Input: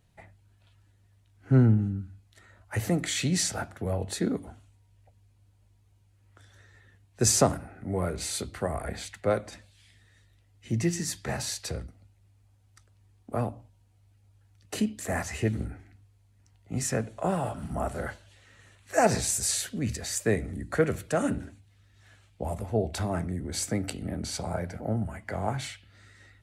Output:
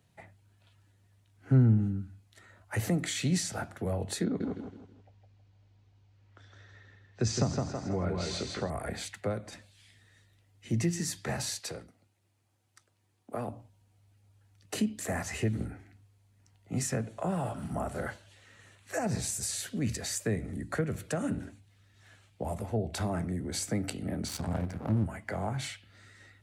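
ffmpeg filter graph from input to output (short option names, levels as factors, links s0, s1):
-filter_complex "[0:a]asettb=1/sr,asplit=3[s0][s1][s2];[s0]atrim=end=4.244[s3];[s1]atrim=start=4.24:end=8.7,asetpts=PTS-STARTPTS,afade=t=in:d=0.004:c=qsin,afade=t=out:st=4.456:d=0.004:c=qsin,lowpass=f=5700:w=0.5412,lowpass=f=5700:w=1.3066,aecho=1:1:161|322|483|644:0.596|0.208|0.073|0.0255,atrim=end_sample=196686[s4];[s2]atrim=start=8.696[s5];[s3][s4]acrossfade=d=0.004:c1=hsin:c2=qsin[s6];[s6][s5]acrossfade=d=0.004:c1=qsin:c2=hsin,asettb=1/sr,asplit=3[s7][s8][s9];[s7]atrim=end=11.594[s10];[s8]atrim=start=11.59:end=13.48,asetpts=PTS-STARTPTS,afade=t=in:d=0.004:c=qsin,afade=t=out:st=1.886:d=0.004:c=qsin,highpass=f=270:p=1,tremolo=f=240:d=0.4[s11];[s9]atrim=start=13.476[s12];[s10][s11]acrossfade=d=0.004:c1=hsin:c2=qsin[s13];[s13][s12]acrossfade=d=0.004:c1=qsin:c2=hsin,asettb=1/sr,asplit=3[s14][s15][s16];[s14]atrim=end=24.284[s17];[s15]atrim=start=24.28:end=25.06,asetpts=PTS-STARTPTS,afade=t=in:d=0.004:c=qsin,afade=t=out:st=0.776:d=0.004:c=qsin,equalizer=f=81:t=o:w=2.3:g=10,aeval=exprs='max(val(0),0)':c=same[s18];[s16]atrim=start=25.056[s19];[s17][s18]acrossfade=d=0.004:c1=hsin:c2=qsin[s20];[s20][s19]acrossfade=d=0.004:c1=qsin:c2=hsin,highpass=92,acrossover=split=220[s21][s22];[s22]acompressor=threshold=0.0282:ratio=10[s23];[s21][s23]amix=inputs=2:normalize=0"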